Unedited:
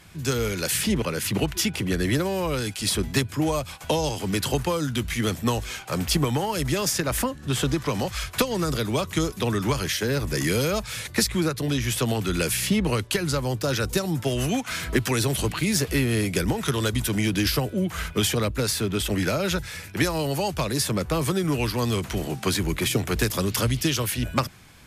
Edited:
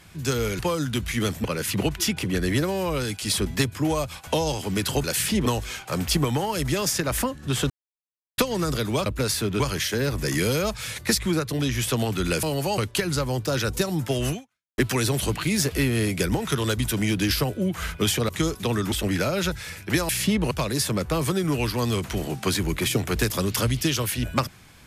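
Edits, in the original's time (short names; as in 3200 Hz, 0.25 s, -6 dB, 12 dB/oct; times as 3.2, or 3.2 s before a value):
0.59–1.01 swap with 4.61–5.46
7.7–8.38 mute
9.06–9.69 swap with 18.45–18.99
12.52–12.94 swap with 20.16–20.51
14.48–14.94 fade out exponential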